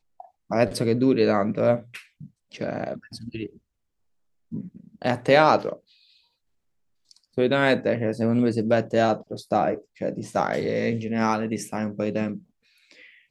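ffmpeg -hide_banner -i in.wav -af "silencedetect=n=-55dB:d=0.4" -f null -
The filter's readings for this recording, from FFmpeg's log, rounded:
silence_start: 3.59
silence_end: 4.51 | silence_duration: 0.93
silence_start: 6.24
silence_end: 7.09 | silence_duration: 0.85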